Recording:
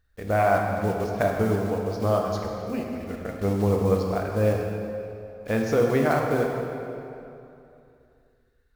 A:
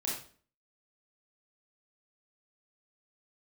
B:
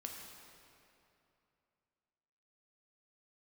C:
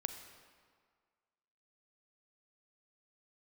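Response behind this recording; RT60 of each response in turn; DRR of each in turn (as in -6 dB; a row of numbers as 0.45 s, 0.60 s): B; 0.45 s, 2.8 s, 1.8 s; -4.5 dB, 0.5 dB, 7.5 dB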